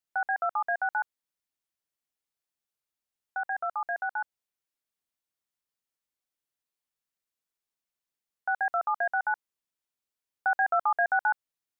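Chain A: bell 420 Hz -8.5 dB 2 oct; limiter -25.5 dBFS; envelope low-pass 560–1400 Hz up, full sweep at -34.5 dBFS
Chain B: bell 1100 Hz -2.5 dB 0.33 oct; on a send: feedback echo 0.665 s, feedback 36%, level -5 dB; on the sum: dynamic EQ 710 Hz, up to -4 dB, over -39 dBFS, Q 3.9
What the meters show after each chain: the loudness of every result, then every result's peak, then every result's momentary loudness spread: -26.0, -31.5 LUFS; -16.0, -15.0 dBFS; 8, 18 LU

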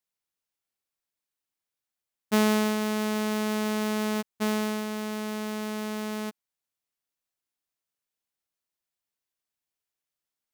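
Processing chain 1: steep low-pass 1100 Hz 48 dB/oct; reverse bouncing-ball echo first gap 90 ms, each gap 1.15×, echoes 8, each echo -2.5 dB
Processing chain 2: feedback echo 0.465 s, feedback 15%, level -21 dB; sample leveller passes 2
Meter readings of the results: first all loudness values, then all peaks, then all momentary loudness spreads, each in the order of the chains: -28.0, -24.0 LUFS; -14.5, -15.5 dBFS; 12, 5 LU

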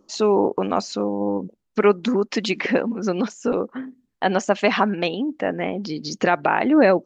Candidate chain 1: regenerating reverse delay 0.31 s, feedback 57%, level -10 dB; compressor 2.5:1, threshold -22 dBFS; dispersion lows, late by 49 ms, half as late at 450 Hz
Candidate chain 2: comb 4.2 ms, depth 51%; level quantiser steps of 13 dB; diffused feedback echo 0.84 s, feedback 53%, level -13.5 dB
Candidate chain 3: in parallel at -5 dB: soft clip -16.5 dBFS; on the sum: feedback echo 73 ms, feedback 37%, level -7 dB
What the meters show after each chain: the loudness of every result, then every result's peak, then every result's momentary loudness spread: -26.0, -27.0, -18.5 LUFS; -9.5, -4.5, -1.0 dBFS; 4, 10, 8 LU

